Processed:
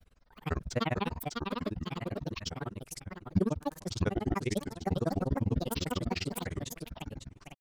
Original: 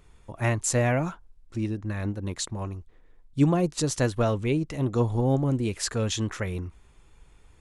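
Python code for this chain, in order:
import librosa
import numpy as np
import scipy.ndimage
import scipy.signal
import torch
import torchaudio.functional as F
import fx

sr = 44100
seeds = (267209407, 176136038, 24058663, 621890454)

y = fx.echo_feedback(x, sr, ms=554, feedback_pct=36, wet_db=-4.5)
y = fx.granulator(y, sr, seeds[0], grain_ms=48.0, per_s=20.0, spray_ms=100.0, spread_st=12)
y = F.gain(torch.from_numpy(y), -4.5).numpy()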